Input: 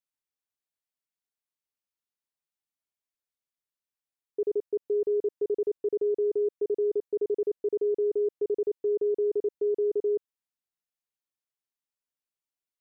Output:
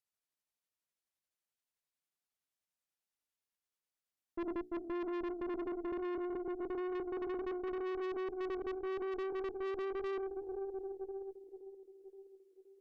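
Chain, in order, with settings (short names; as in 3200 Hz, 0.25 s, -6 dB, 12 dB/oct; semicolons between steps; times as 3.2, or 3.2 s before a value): gliding pitch shift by -5 st ending unshifted; notches 60/120/180/240/300/360/420 Hz; split-band echo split 360 Hz, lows 0.372 s, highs 0.522 s, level -11 dB; tube stage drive 37 dB, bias 0.55; in parallel at -2.5 dB: vocal rider within 5 dB; on the sum: gain -4 dB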